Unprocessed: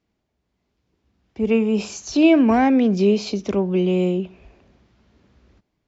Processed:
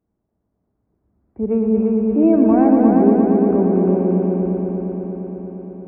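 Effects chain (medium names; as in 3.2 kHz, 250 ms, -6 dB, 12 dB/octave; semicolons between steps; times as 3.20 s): Gaussian low-pass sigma 6.9 samples; multi-head delay 116 ms, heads all three, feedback 75%, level -7 dB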